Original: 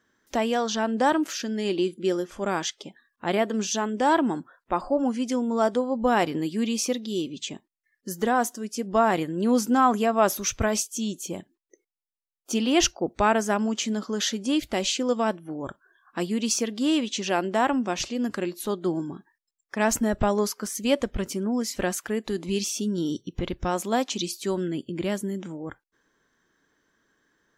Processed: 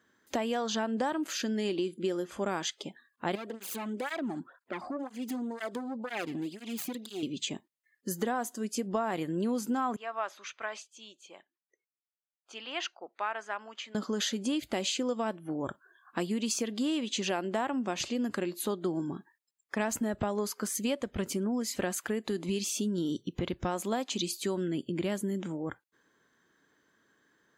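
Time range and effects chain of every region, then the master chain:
3.35–7.23 s: self-modulated delay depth 0.34 ms + compression 2.5:1, threshold -33 dBFS + cancelling through-zero flanger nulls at 2 Hz, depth 2.3 ms
9.96–13.95 s: high-pass 1.2 kHz + tape spacing loss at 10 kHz 30 dB
whole clip: high-pass 84 Hz; band-stop 5.6 kHz, Q 7.8; compression, threshold -28 dBFS

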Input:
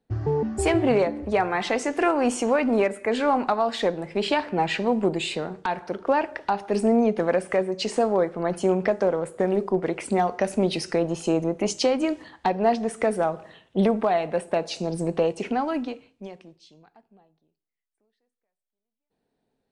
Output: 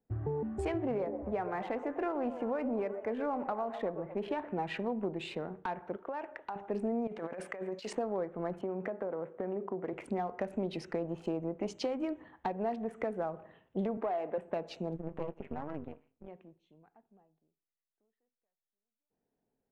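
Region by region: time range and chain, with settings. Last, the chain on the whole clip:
0.84–4.45 s: treble shelf 3.2 kHz -11.5 dB + repeats whose band climbs or falls 125 ms, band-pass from 500 Hz, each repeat 0.7 oct, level -9 dB
5.96–6.56 s: bass shelf 310 Hz -11 dB + compression 5:1, threshold -26 dBFS
7.07–7.93 s: low-pass 9.7 kHz + tilt EQ +3 dB/octave + compressor with a negative ratio -31 dBFS
8.61–9.93 s: band-pass 170–2900 Hz + compression 4:1, threshold -23 dBFS
13.97–14.38 s: Chebyshev band-pass 330–7000 Hz + waveshaping leveller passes 1 + distance through air 270 m
14.96–16.28 s: partial rectifier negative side -12 dB + low-pass 3.8 kHz + AM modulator 150 Hz, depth 70%
whole clip: local Wiener filter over 9 samples; low-pass 2.1 kHz 6 dB/octave; compression 3:1, threshold -24 dBFS; trim -7.5 dB

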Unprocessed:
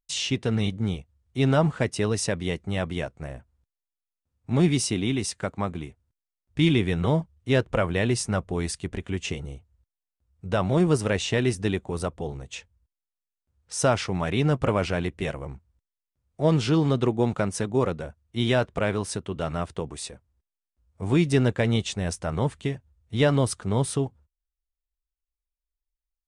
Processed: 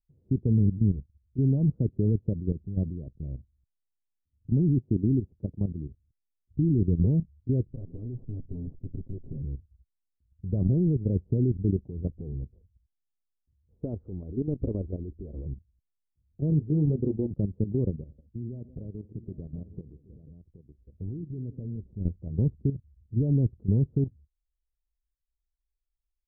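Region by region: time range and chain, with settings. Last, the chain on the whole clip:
7.67–9.42 s: comb filter that takes the minimum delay 7.6 ms + compression 3:1, threshold -32 dBFS
13.83–15.45 s: companding laws mixed up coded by mu + peaking EQ 140 Hz -12 dB 1 oct
16.50–17.31 s: bass shelf 280 Hz -7 dB + doubling 20 ms -5 dB
18.01–21.82 s: compression 4:1, threshold -36 dBFS + multi-tap echo 74/169/173/772 ms -15.5/-14.5/-19.5/-10.5 dB
whole clip: level held to a coarse grid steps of 13 dB; inverse Chebyshev low-pass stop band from 2.3 kHz, stop band 80 dB; bass shelf 180 Hz +9.5 dB

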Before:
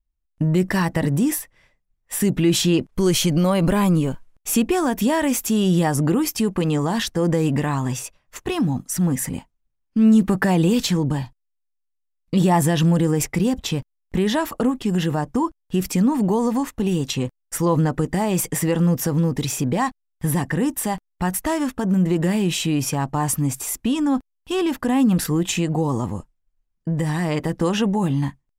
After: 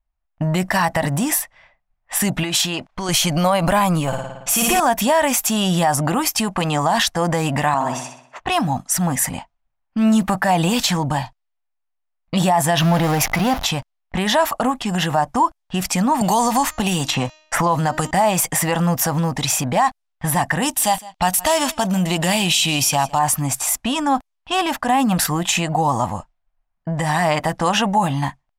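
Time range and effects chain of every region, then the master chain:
2.43–3.09 s: bass shelf 220 Hz -6.5 dB + compression 2:1, threshold -23 dBFS
4.07–4.80 s: expander -43 dBFS + comb 5.9 ms, depth 63% + flutter echo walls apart 9.6 m, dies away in 1.1 s
7.74–8.40 s: high-pass 350 Hz + tilt shelf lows +8 dB, about 870 Hz + flutter echo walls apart 10.9 m, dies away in 0.65 s
12.78–13.65 s: jump at every zero crossing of -25.5 dBFS + peaking EQ 8.1 kHz -15 dB 0.36 oct
16.21–18.11 s: de-hum 309.8 Hz, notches 24 + three bands compressed up and down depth 100%
20.62–23.19 s: resonant high shelf 2.3 kHz +7 dB, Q 1.5 + delay 161 ms -22.5 dB
whole clip: resonant low shelf 540 Hz -8 dB, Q 3; peak limiter -15.5 dBFS; level-controlled noise filter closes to 2.2 kHz, open at -24.5 dBFS; trim +8 dB

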